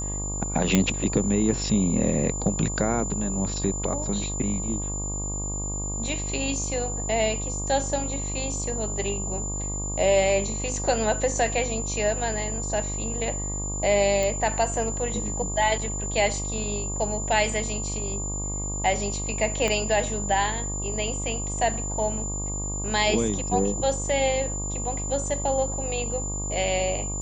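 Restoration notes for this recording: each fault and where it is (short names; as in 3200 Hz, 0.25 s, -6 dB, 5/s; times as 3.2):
buzz 50 Hz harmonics 24 -32 dBFS
tone 7100 Hz -31 dBFS
0.75 pop -5 dBFS
14.23 pop
19.68 pop -12 dBFS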